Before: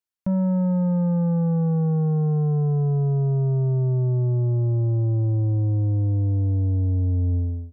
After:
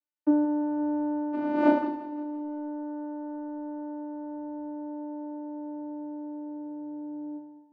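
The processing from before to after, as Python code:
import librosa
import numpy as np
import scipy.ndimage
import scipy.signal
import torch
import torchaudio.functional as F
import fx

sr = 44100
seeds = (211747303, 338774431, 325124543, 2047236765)

y = fx.dmg_wind(x, sr, seeds[0], corner_hz=570.0, level_db=-15.0, at=(1.32, 2.08), fade=0.02)
y = fx.dereverb_blind(y, sr, rt60_s=1.9)
y = fx.rider(y, sr, range_db=3, speed_s=0.5)
y = fx.vocoder(y, sr, bands=8, carrier='saw', carrier_hz=297.0)
y = fx.air_absorb(y, sr, metres=96.0)
y = fx.doubler(y, sr, ms=35.0, db=-6.5)
y = fx.echo_feedback(y, sr, ms=174, feedback_pct=53, wet_db=-15.5)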